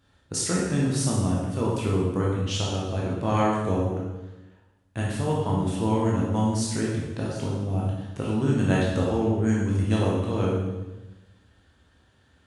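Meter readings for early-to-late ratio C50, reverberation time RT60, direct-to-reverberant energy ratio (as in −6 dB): 0.0 dB, 1.1 s, −4.5 dB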